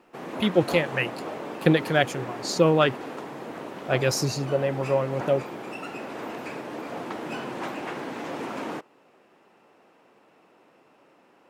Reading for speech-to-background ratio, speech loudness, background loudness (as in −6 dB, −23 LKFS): 10.5 dB, −24.5 LKFS, −35.0 LKFS